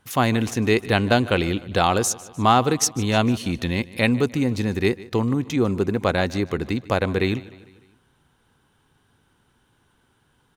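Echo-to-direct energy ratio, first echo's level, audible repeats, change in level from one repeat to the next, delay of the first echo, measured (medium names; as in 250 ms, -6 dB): -18.5 dB, -20.0 dB, 3, -5.5 dB, 151 ms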